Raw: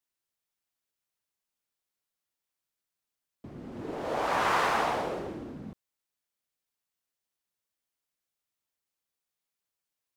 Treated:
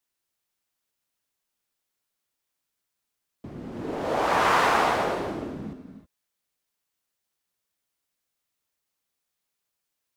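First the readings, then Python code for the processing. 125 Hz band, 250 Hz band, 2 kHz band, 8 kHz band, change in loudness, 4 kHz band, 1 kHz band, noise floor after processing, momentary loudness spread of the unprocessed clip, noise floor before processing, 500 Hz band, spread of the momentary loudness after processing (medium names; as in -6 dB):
+5.5 dB, +6.0 dB, +5.5 dB, +5.5 dB, +5.5 dB, +5.5 dB, +5.5 dB, -83 dBFS, 20 LU, under -85 dBFS, +5.5 dB, 19 LU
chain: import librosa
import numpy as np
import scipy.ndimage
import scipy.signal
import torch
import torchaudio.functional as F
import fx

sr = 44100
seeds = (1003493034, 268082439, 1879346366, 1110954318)

y = fx.rev_gated(x, sr, seeds[0], gate_ms=340, shape='rising', drr_db=9.0)
y = F.gain(torch.from_numpy(y), 5.0).numpy()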